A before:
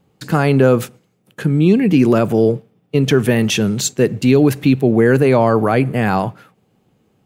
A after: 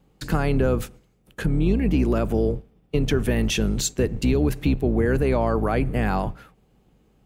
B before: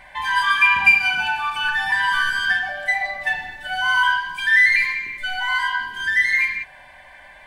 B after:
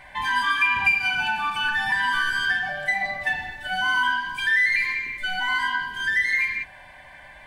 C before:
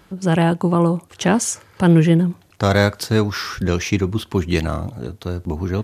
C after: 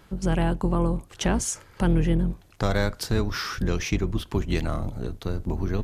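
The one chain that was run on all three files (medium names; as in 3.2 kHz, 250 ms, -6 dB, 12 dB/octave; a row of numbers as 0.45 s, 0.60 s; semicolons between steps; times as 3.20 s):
octave divider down 2 oct, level 0 dB; compression 2:1, threshold -20 dBFS; peak normalisation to -9 dBFS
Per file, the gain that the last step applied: -2.5 dB, -1.0 dB, -3.5 dB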